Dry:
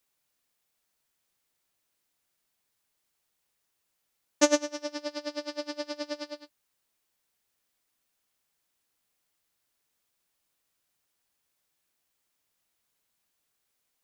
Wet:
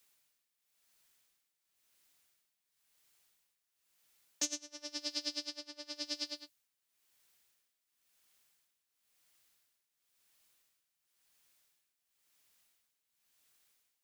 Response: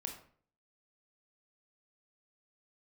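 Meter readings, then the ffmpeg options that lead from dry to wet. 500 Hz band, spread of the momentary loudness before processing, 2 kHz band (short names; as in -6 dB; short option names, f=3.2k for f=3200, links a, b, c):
-21.5 dB, 14 LU, -13.0 dB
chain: -filter_complex "[0:a]acrossover=split=280|1500[a][b][c];[c]acontrast=50[d];[a][b][d]amix=inputs=3:normalize=0,alimiter=limit=-12dB:level=0:latency=1:release=222,tremolo=f=0.96:d=0.79,acrossover=split=230|3000[e][f][g];[f]acompressor=threshold=-53dB:ratio=5[h];[e][h][g]amix=inputs=3:normalize=0,volume=1dB"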